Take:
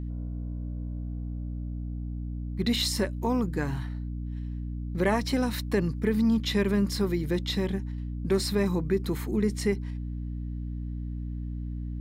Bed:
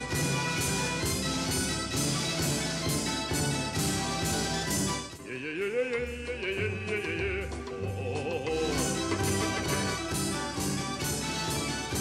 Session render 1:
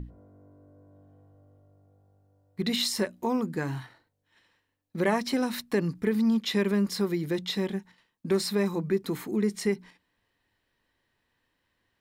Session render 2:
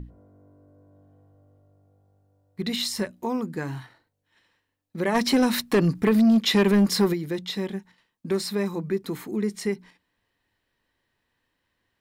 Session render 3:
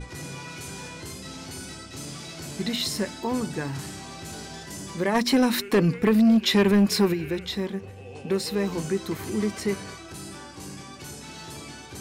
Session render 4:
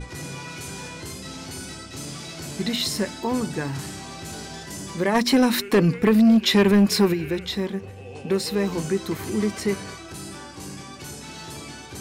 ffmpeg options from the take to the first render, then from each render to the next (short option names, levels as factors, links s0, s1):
-af "bandreject=f=60:t=h:w=6,bandreject=f=120:t=h:w=6,bandreject=f=180:t=h:w=6,bandreject=f=240:t=h:w=6,bandreject=f=300:t=h:w=6"
-filter_complex "[0:a]asettb=1/sr,asplit=3[s0][s1][s2];[s0]atrim=end=2.604[s3];[s1]atrim=start=2.6:end=3.11,asetpts=PTS-STARTPTS,afade=t=in:d=0.004:c=qsin,afade=t=out:st=0.506:d=0.004:c=qsin,asubboost=boost=11.5:cutoff=190[s4];[s2]atrim=start=3.106[s5];[s3][s4]acrossfade=d=0.004:c1=hsin:c2=qsin[s6];[s6][s5]acrossfade=d=0.004:c1=qsin:c2=hsin,asplit=3[s7][s8][s9];[s7]afade=t=out:st=5.14:d=0.02[s10];[s8]aeval=exprs='0.2*sin(PI/2*1.78*val(0)/0.2)':c=same,afade=t=in:st=5.14:d=0.02,afade=t=out:st=7.12:d=0.02[s11];[s9]afade=t=in:st=7.12:d=0.02[s12];[s10][s11][s12]amix=inputs=3:normalize=0"
-filter_complex "[1:a]volume=0.376[s0];[0:a][s0]amix=inputs=2:normalize=0"
-af "volume=1.33"